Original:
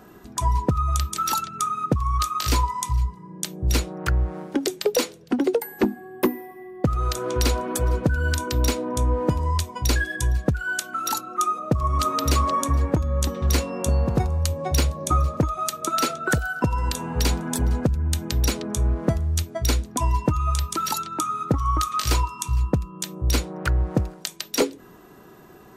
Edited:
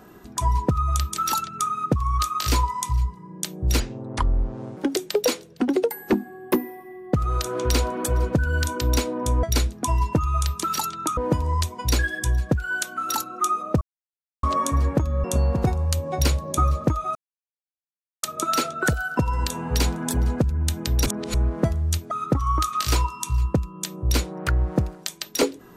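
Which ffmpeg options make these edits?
-filter_complex "[0:a]asplit=12[a][b][c][d][e][f][g][h][i][j][k][l];[a]atrim=end=3.804[m];[b]atrim=start=3.8:end=4.48,asetpts=PTS-STARTPTS,asetrate=30870,aresample=44100[n];[c]atrim=start=4.476:end=9.142[o];[d]atrim=start=19.558:end=21.302[p];[e]atrim=start=9.138:end=11.78,asetpts=PTS-STARTPTS,afade=t=out:st=2.638:d=0.004:c=hsin[q];[f]atrim=start=11.78:end=12.4,asetpts=PTS-STARTPTS,volume=0[r];[g]atrim=start=12.4:end=13.212,asetpts=PTS-STARTPTS,afade=t=in:d=0.004:c=hsin[s];[h]atrim=start=13.768:end=15.68,asetpts=PTS-STARTPTS,afade=t=out:st=1.908:d=0.004:c=hsin,apad=pad_dur=1.08[t];[i]atrim=start=15.68:end=18.512,asetpts=PTS-STARTPTS,afade=t=in:d=0.004:c=hsin[u];[j]atrim=start=18.508:end=18.792,asetpts=PTS-STARTPTS,areverse[v];[k]atrim=start=18.788:end=19.562[w];[l]atrim=start=21.298[x];[m][n]acrossfade=d=0.004:c1=hsin:c2=hsin[y];[y][o]acrossfade=d=0.004:c1=hsin:c2=hsin[z];[z][p]acrossfade=d=0.004:c1=hsin:c2=hsin[aa];[q][r][s]concat=n=3:v=0:a=1[ab];[aa][ab]acrossfade=d=0.004:c1=hsin:c2=hsin[ac];[t][u]concat=n=2:v=0:a=1[ad];[ac][ad]acrossfade=d=0.004:c1=hsin:c2=hsin[ae];[ae][v]acrossfade=d=0.004:c1=hsin:c2=hsin[af];[af][w]acrossfade=d=0.004:c1=hsin:c2=hsin[ag];[ag][x]acrossfade=d=0.004:c1=hsin:c2=hsin"

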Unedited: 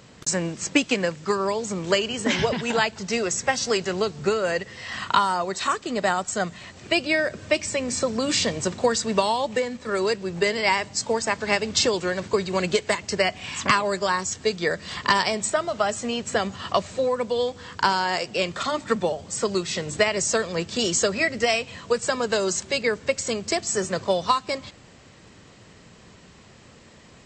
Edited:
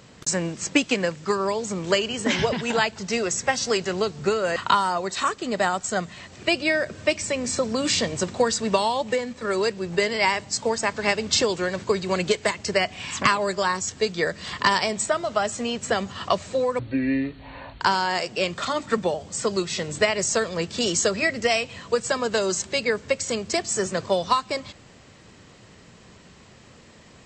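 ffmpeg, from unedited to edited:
-filter_complex "[0:a]asplit=4[a][b][c][d];[a]atrim=end=4.562[e];[b]atrim=start=4.998:end=17.234[f];[c]atrim=start=17.23:end=17.79,asetpts=PTS-STARTPTS,asetrate=24255,aresample=44100[g];[d]atrim=start=17.786[h];[e][f]acrossfade=d=0.004:c1=hsin:c2=hsin[i];[i][g]acrossfade=d=0.004:c1=hsin:c2=hsin[j];[j][h]acrossfade=d=0.004:c1=hsin:c2=hsin"

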